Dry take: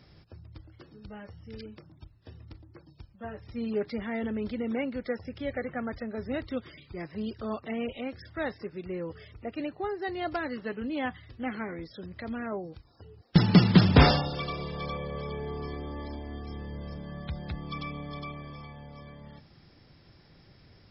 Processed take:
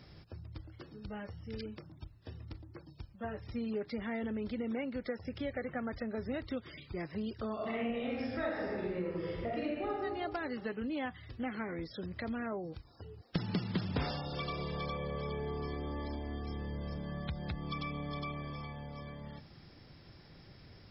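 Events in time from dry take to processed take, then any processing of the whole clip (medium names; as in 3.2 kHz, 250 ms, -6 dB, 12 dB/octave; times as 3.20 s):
7.54–9.88 s: reverb throw, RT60 1.4 s, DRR -7 dB
whole clip: compression 4:1, threshold -36 dBFS; trim +1 dB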